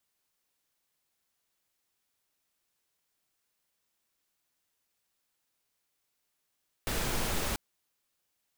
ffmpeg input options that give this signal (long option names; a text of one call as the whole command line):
ffmpeg -f lavfi -i "anoisesrc=color=pink:amplitude=0.136:duration=0.69:sample_rate=44100:seed=1" out.wav